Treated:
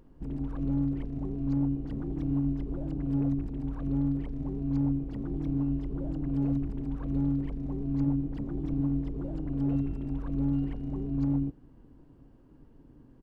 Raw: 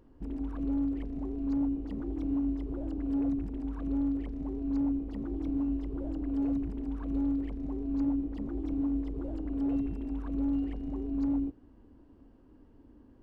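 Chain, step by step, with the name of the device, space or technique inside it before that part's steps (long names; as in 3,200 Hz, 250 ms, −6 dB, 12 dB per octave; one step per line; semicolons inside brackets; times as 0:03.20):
octave pedal (pitch-shifted copies added −12 semitones −3 dB)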